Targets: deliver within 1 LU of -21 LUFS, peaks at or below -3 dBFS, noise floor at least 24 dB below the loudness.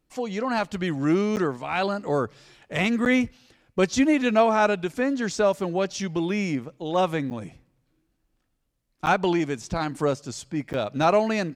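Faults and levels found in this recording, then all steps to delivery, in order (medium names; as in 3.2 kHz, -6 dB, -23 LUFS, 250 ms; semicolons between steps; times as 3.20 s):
dropouts 5; longest dropout 9.2 ms; loudness -25.0 LUFS; peak level -7.5 dBFS; loudness target -21.0 LUFS
-> interpolate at 1.36/3.05/7.30/9.06/10.73 s, 9.2 ms; trim +4 dB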